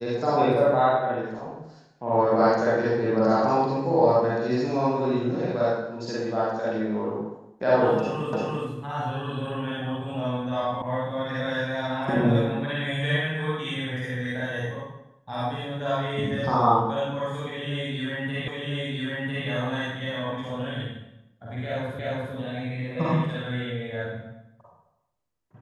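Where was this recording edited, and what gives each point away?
8.33 repeat of the last 0.34 s
10.82 sound cut off
18.48 repeat of the last 1 s
21.99 repeat of the last 0.35 s

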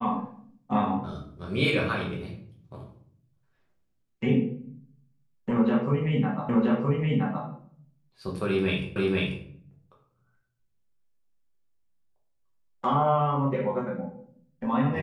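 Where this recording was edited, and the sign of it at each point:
6.49 repeat of the last 0.97 s
8.96 repeat of the last 0.49 s

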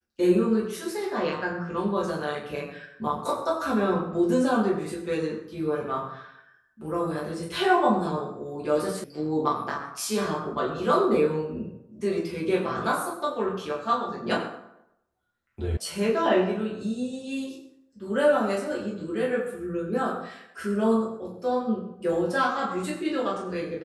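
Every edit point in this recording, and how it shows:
9.04 sound cut off
15.77 sound cut off

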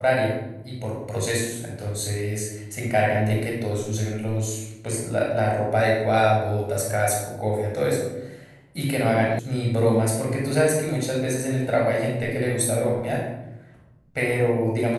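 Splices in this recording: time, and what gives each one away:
9.39 sound cut off

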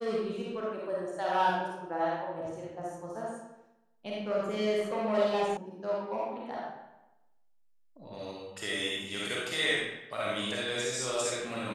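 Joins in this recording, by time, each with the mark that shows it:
5.57 sound cut off

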